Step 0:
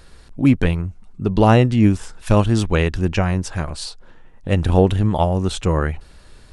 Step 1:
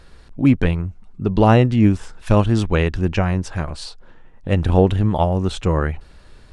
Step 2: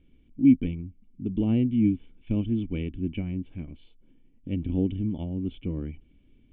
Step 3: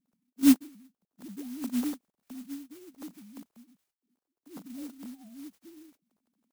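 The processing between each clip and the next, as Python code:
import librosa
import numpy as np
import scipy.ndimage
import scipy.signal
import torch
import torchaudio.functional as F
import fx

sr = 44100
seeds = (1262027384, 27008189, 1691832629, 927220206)

y1 = fx.high_shelf(x, sr, hz=6600.0, db=-10.0)
y2 = fx.formant_cascade(y1, sr, vowel='i')
y2 = y2 * 10.0 ** (-1.5 / 20.0)
y3 = fx.sine_speech(y2, sr)
y3 = fx.clock_jitter(y3, sr, seeds[0], jitter_ms=0.12)
y3 = y3 * 10.0 ** (-6.0 / 20.0)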